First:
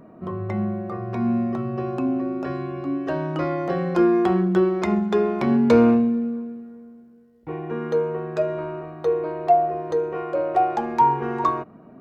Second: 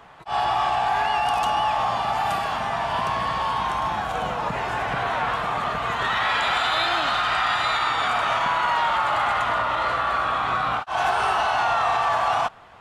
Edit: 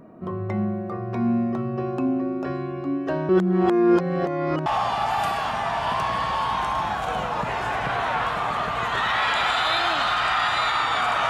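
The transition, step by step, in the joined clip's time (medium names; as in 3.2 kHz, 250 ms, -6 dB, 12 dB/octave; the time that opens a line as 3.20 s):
first
3.29–4.66 s: reverse
4.66 s: go over to second from 1.73 s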